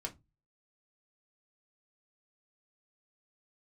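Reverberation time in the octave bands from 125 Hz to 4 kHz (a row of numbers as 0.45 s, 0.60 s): 0.45 s, 0.30 s, 0.20 s, 0.20 s, 0.15 s, 0.15 s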